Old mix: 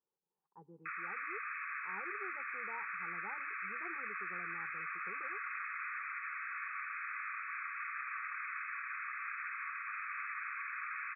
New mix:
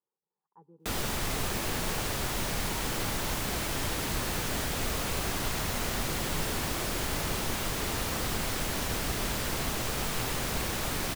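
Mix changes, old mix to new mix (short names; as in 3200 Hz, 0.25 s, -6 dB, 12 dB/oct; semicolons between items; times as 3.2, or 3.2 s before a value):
background: remove brick-wall FIR band-pass 1100–2600 Hz; master: remove air absorption 160 m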